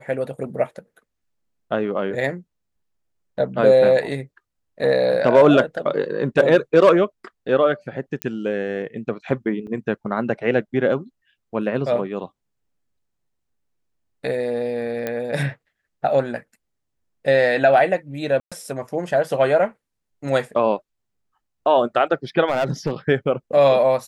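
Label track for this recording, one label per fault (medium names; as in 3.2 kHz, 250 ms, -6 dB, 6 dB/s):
8.220000	8.220000	pop -9 dBFS
9.670000	9.670000	dropout 4.3 ms
15.070000	15.070000	pop -12 dBFS
18.400000	18.520000	dropout 116 ms
22.480000	22.920000	clipped -15 dBFS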